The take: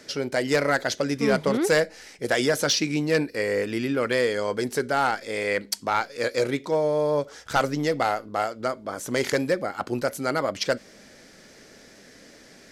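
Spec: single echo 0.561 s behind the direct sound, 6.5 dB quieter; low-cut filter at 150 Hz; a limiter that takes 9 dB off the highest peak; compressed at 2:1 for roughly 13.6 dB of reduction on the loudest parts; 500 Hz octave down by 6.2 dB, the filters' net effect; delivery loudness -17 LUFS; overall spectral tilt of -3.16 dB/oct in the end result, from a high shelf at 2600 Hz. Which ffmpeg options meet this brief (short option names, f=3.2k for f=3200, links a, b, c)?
-af "highpass=150,equalizer=f=500:t=o:g=-7.5,highshelf=f=2.6k:g=3.5,acompressor=threshold=-43dB:ratio=2,alimiter=level_in=4.5dB:limit=-24dB:level=0:latency=1,volume=-4.5dB,aecho=1:1:561:0.473,volume=23dB"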